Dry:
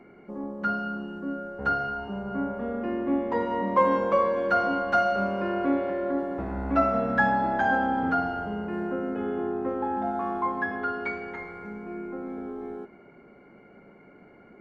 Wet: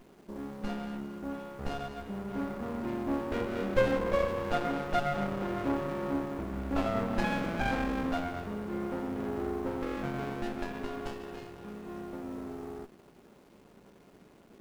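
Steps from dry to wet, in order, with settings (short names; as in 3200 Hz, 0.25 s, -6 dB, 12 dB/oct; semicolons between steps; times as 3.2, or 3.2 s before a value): Chebyshev low-pass 3600 Hz, order 8; in parallel at -7 dB: requantised 8-bit, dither triangular; on the sum: running maximum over 33 samples; gain -6 dB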